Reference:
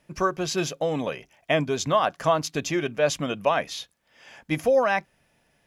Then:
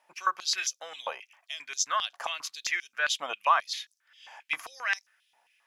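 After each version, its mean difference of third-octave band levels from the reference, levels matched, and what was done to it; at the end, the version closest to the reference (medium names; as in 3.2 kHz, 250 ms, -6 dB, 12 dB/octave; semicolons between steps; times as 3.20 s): 11.0 dB: step-sequenced high-pass 7.5 Hz 850–5700 Hz; trim -5 dB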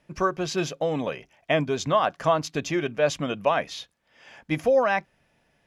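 1.0 dB: treble shelf 8 kHz -11 dB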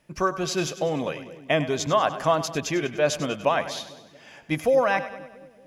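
3.5 dB: two-band feedback delay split 480 Hz, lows 227 ms, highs 98 ms, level -13 dB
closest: second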